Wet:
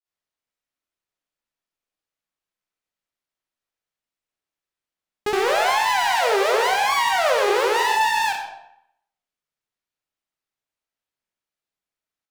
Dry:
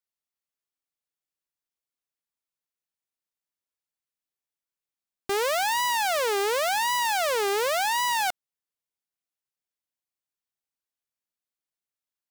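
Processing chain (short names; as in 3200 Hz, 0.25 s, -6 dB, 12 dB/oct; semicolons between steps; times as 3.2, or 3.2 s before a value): high shelf 5400 Hz -9.5 dB; de-hum 52.36 Hz, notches 25; grains 0.182 s, grains 16/s, pitch spread up and down by 3 st; on a send: reverb RT60 0.70 s, pre-delay 15 ms, DRR 4.5 dB; on the sum: gain +8.5 dB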